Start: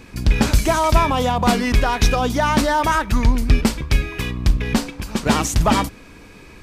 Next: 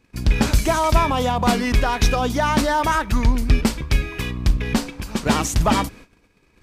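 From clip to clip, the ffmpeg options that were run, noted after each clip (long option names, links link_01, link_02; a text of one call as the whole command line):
ffmpeg -i in.wav -af "agate=range=-18dB:threshold=-39dB:ratio=16:detection=peak,volume=-1.5dB" out.wav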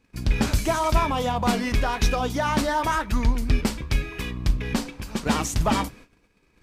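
ffmpeg -i in.wav -af "flanger=delay=3.6:depth=8.1:regen=-71:speed=0.94:shape=triangular" out.wav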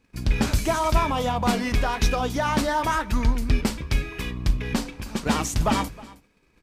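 ffmpeg -i in.wav -af "aecho=1:1:316:0.0891" out.wav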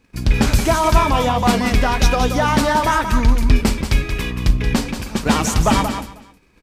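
ffmpeg -i in.wav -af "aecho=1:1:179:0.398,volume=6.5dB" out.wav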